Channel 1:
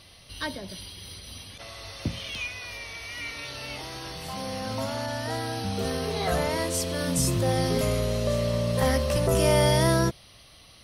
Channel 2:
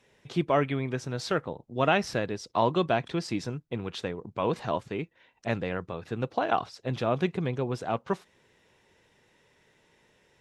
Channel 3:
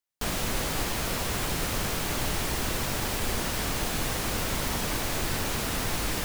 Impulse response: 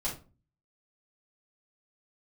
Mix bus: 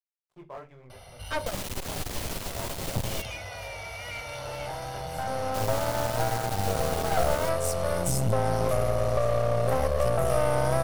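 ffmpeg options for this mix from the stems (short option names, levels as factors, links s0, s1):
-filter_complex "[0:a]aecho=1:1:1.4:0.7,adelay=900,volume=1[s0];[1:a]highshelf=f=3800:g=-6,flanger=delay=20:depth=5.1:speed=2.6,aeval=exprs='sgn(val(0))*max(abs(val(0))-0.00891,0)':c=same,volume=0.119,asplit=2[s1][s2];[s2]volume=0.282[s3];[2:a]adelay=1250,volume=0.708,asplit=3[s4][s5][s6];[s4]atrim=end=3.22,asetpts=PTS-STARTPTS,afade=t=out:st=3.216:d=0.004:c=hsin[s7];[s5]atrim=start=3.22:end=5.54,asetpts=PTS-STARTPTS,volume=0[s8];[s6]atrim=start=5.54,asetpts=PTS-STARTPTS,afade=t=in:d=0.004:c=hsin[s9];[s7][s8][s9]concat=n=3:v=0:a=1,asplit=2[s10][s11];[s11]volume=0.106[s12];[s0][s1]amix=inputs=2:normalize=0,equalizer=f=125:t=o:w=1:g=5,equalizer=f=250:t=o:w=1:g=-11,equalizer=f=500:t=o:w=1:g=8,equalizer=f=1000:t=o:w=1:g=8,equalizer=f=4000:t=o:w=1:g=-8,acompressor=threshold=0.141:ratio=6,volume=1[s13];[3:a]atrim=start_sample=2205[s14];[s3][s12]amix=inputs=2:normalize=0[s15];[s15][s14]afir=irnorm=-1:irlink=0[s16];[s10][s13][s16]amix=inputs=3:normalize=0,adynamicequalizer=threshold=0.00891:dfrequency=1500:dqfactor=1:tfrequency=1500:tqfactor=1:attack=5:release=100:ratio=0.375:range=3:mode=cutabove:tftype=bell,aeval=exprs='clip(val(0),-1,0.0158)':c=same"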